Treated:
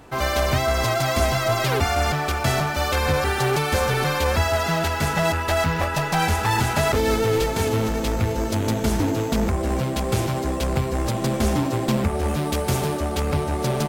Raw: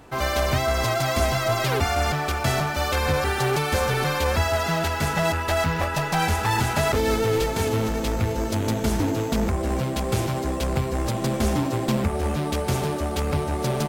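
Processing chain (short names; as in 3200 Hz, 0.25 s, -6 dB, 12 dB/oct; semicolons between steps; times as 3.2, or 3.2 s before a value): 12.28–12.97 high shelf 8200 Hz +5 dB; gain +1.5 dB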